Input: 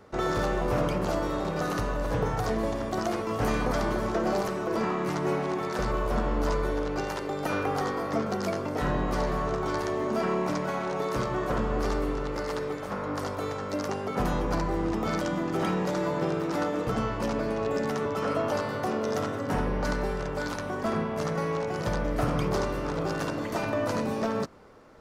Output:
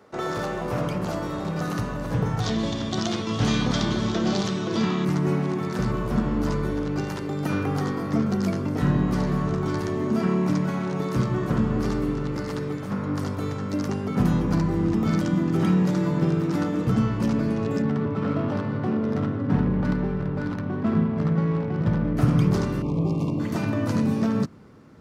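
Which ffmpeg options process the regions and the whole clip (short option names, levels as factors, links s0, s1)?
-filter_complex "[0:a]asettb=1/sr,asplit=3[s0][s1][s2];[s0]atrim=end=2.404[s3];[s1]atrim=start=2.4:end=5.05,asetpts=PTS-STARTPTS,afade=t=in:d=0.004:c=qsin,afade=t=out:st=2.646:d=0.004:c=qsin,lowpass=f=6400:t=q:w=2.1,equalizer=f=3500:w=2.3:g=14[s4];[s2]atrim=start=5.046[s5];[s3][s4]acrossfade=d=0.004:c1=hsin:c2=qsin[s6];[s6][s5]acrossfade=d=0.004:c1=qsin:c2=hsin,asettb=1/sr,asplit=3[s7][s8][s9];[s7]atrim=end=17.824[s10];[s8]atrim=start=17.82:end=22.17,asetpts=PTS-STARTPTS,afade=t=in:d=0.004:c=qsin,afade=t=out:st=4.346:d=0.004:c=qsin,adynamicsmooth=sensitivity=2.5:basefreq=1500,bandreject=f=6600:w=20[s11];[s9]atrim=start=22.166[s12];[s10][s11]acrossfade=d=0.004:c1=hsin:c2=qsin[s13];[s13][s12]acrossfade=d=0.004:c1=qsin:c2=hsin,asettb=1/sr,asplit=3[s14][s15][s16];[s14]atrim=end=22.824[s17];[s15]atrim=start=22.82:end=23.4,asetpts=PTS-STARTPTS,afade=t=in:d=0.004:c=qsin,afade=t=out:st=0.576:d=0.004:c=qsin,asuperstop=centerf=1600:order=12:qfactor=1.6,highshelf=f=2700:g=-11[s18];[s16]atrim=start=23.396[s19];[s17][s18]acrossfade=d=0.004:c1=hsin:c2=qsin[s20];[s20][s19]acrossfade=d=0.004:c1=qsin:c2=hsin,highpass=140,asubboost=boost=8:cutoff=200"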